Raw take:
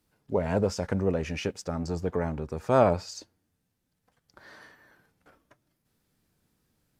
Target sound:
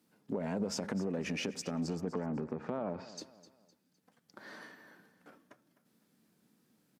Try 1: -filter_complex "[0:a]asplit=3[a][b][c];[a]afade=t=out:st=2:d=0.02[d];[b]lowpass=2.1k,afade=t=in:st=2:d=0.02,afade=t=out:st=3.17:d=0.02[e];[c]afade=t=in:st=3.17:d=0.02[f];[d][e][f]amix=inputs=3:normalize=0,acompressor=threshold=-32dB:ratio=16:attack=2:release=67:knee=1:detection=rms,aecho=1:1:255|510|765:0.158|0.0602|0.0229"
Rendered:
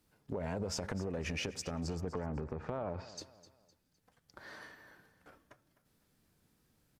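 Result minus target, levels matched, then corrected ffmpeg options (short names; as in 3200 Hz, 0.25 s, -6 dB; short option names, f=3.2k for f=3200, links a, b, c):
250 Hz band -3.0 dB
-filter_complex "[0:a]asplit=3[a][b][c];[a]afade=t=out:st=2:d=0.02[d];[b]lowpass=2.1k,afade=t=in:st=2:d=0.02,afade=t=out:st=3.17:d=0.02[e];[c]afade=t=in:st=3.17:d=0.02[f];[d][e][f]amix=inputs=3:normalize=0,acompressor=threshold=-32dB:ratio=16:attack=2:release=67:knee=1:detection=rms,highpass=f=210:t=q:w=2.2,aecho=1:1:255|510|765:0.158|0.0602|0.0229"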